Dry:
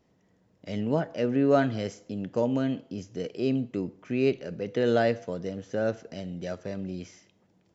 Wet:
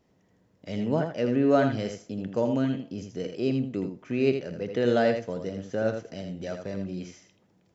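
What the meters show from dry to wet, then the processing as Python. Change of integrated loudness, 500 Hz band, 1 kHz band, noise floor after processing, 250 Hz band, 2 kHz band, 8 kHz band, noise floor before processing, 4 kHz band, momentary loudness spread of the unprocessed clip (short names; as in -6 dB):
+1.0 dB, +1.0 dB, +0.5 dB, -66 dBFS, +1.0 dB, +0.5 dB, n/a, -67 dBFS, +1.0 dB, 13 LU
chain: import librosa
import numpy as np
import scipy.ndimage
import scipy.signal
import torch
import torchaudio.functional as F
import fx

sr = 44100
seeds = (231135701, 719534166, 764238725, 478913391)

y = x + 10.0 ** (-7.0 / 20.0) * np.pad(x, (int(82 * sr / 1000.0), 0))[:len(x)]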